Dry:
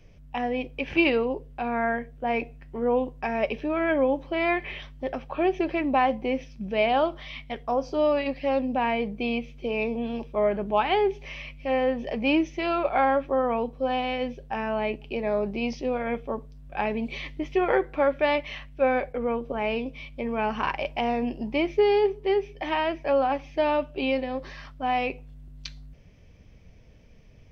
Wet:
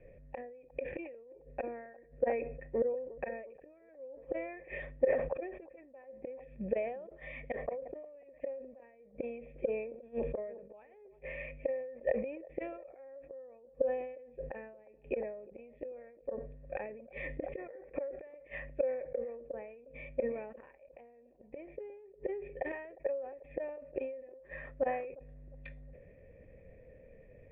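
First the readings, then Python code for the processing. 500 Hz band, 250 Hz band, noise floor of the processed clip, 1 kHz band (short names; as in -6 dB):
-11.0 dB, -19.0 dB, -60 dBFS, -21.0 dB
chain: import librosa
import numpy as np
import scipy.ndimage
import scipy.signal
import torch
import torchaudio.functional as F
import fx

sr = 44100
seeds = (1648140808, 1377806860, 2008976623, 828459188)

y = fx.high_shelf(x, sr, hz=2300.0, db=-9.0)
y = fx.gate_flip(y, sr, shuts_db=-23.0, range_db=-36)
y = fx.formant_cascade(y, sr, vowel='e')
y = fx.echo_wet_bandpass(y, sr, ms=356, feedback_pct=42, hz=580.0, wet_db=-21.0)
y = fx.sustainer(y, sr, db_per_s=62.0)
y = y * 10.0 ** (13.0 / 20.0)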